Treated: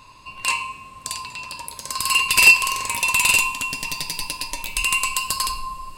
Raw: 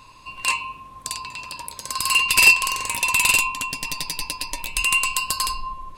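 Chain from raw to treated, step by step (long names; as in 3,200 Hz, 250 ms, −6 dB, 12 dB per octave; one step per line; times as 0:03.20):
coupled-rooms reverb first 0.55 s, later 5 s, from −21 dB, DRR 9.5 dB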